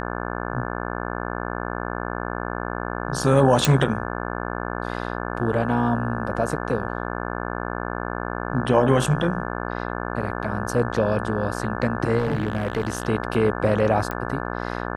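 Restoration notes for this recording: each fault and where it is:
mains buzz 60 Hz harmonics 29 −29 dBFS
0:03.65: click
0:12.18–0:13.07: clipping −18.5 dBFS
0:14.11: click −14 dBFS

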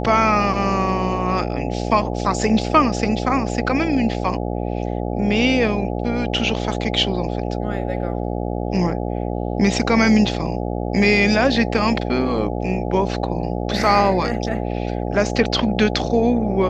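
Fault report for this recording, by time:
mains buzz 60 Hz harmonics 14 −24 dBFS

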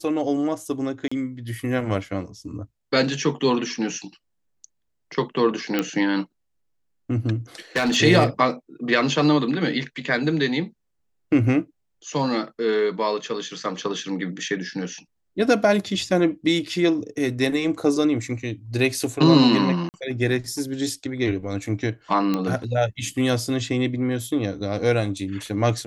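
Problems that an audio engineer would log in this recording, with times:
0:01.08–0:01.11: drop-out 35 ms
0:05.79: click −8 dBFS
0:07.76–0:07.97: clipping −17 dBFS
0:19.89–0:19.94: drop-out 49 ms
0:22.34: click −11 dBFS

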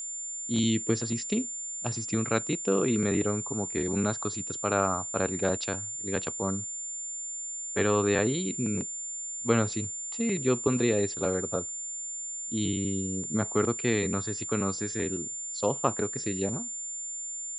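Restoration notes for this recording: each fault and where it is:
whistle 7,200 Hz −34 dBFS

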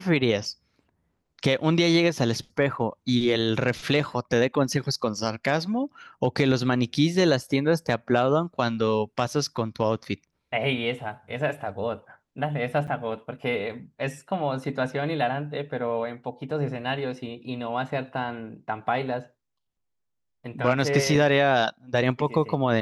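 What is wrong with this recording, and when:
0:12.87–0:12.88: drop-out 7.7 ms

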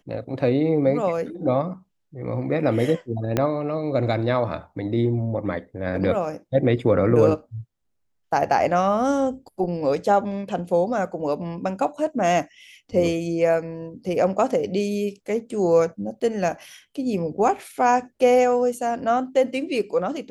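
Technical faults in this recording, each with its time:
0:03.37: click −8 dBFS

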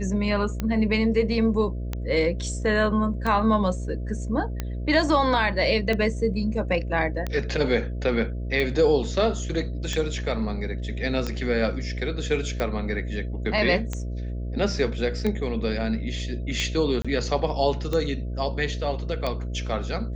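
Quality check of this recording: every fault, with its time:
mains buzz 60 Hz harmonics 11 −30 dBFS
scratch tick 45 rpm −14 dBFS
0:17.02–0:17.05: drop-out 26 ms

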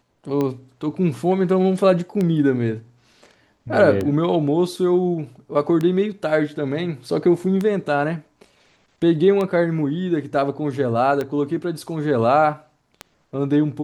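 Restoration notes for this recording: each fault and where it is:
scratch tick 33 1/3 rpm −12 dBFS

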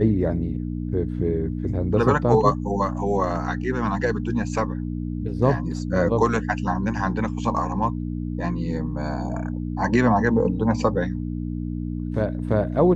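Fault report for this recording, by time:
mains hum 60 Hz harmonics 5 −28 dBFS

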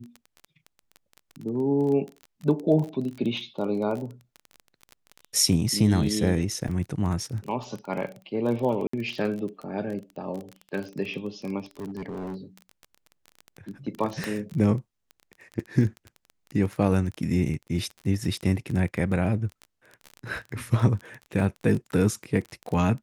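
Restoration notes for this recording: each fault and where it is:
surface crackle 21 per second −31 dBFS
0:06.68: drop-out 4.3 ms
0:08.87–0:08.93: drop-out 64 ms
0:11.71–0:12.36: clipping −30.5 dBFS
0:14.24: click −15 dBFS

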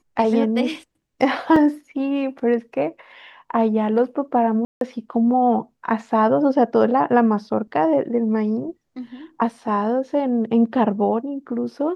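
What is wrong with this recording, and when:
0:01.56: drop-out 3 ms
0:04.65–0:04.81: drop-out 162 ms

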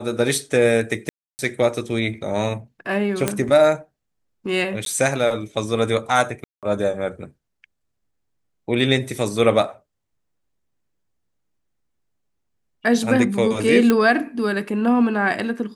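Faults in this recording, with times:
0:01.09–0:01.39: drop-out 299 ms
0:03.28: click −5 dBFS
0:04.85–0:04.86: drop-out 12 ms
0:06.44–0:06.63: drop-out 187 ms
0:13.90: click −5 dBFS

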